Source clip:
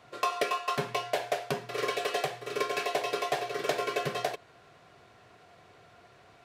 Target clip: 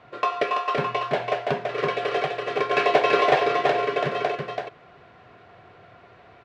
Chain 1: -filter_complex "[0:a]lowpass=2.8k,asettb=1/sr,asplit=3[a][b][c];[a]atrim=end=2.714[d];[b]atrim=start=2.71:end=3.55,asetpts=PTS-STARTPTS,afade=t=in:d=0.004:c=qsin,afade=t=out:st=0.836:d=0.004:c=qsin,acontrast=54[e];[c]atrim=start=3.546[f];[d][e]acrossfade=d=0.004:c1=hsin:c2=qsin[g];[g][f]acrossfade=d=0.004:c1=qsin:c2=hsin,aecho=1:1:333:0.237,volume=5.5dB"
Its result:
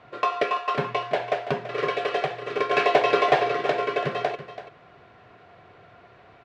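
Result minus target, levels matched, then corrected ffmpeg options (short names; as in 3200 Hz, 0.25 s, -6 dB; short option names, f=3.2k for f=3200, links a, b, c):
echo-to-direct -8.5 dB
-filter_complex "[0:a]lowpass=2.8k,asettb=1/sr,asplit=3[a][b][c];[a]atrim=end=2.714[d];[b]atrim=start=2.71:end=3.55,asetpts=PTS-STARTPTS,afade=t=in:d=0.004:c=qsin,afade=t=out:st=0.836:d=0.004:c=qsin,acontrast=54[e];[c]atrim=start=3.546[f];[d][e]acrossfade=d=0.004:c1=hsin:c2=qsin[g];[g][f]acrossfade=d=0.004:c1=qsin:c2=hsin,aecho=1:1:333:0.631,volume=5.5dB"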